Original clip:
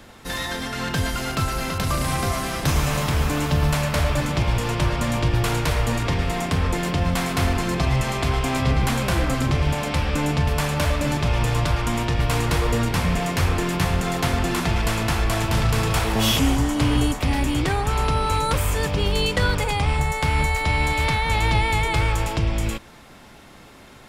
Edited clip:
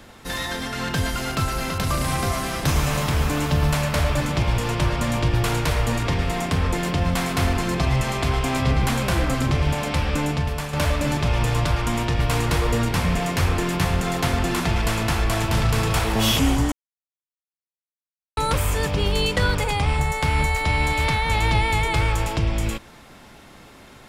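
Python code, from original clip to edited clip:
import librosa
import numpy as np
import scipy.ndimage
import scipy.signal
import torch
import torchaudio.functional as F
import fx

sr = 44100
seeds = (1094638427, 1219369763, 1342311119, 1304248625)

y = fx.edit(x, sr, fx.fade_out_to(start_s=10.15, length_s=0.58, floor_db=-8.0),
    fx.silence(start_s=16.72, length_s=1.65), tone=tone)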